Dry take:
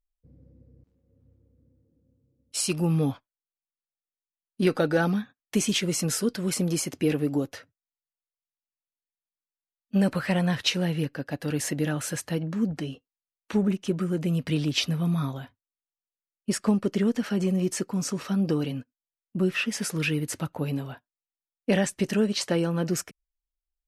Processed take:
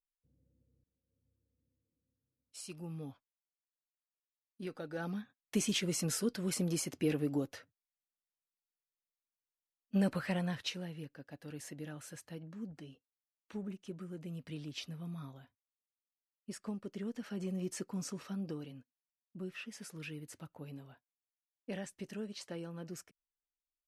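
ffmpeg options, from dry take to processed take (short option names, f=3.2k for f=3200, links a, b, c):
-af "volume=-1dB,afade=t=in:st=4.89:d=0.67:silence=0.251189,afade=t=out:st=10.07:d=0.83:silence=0.316228,afade=t=in:st=16.91:d=1.04:silence=0.446684,afade=t=out:st=17.95:d=0.73:silence=0.421697"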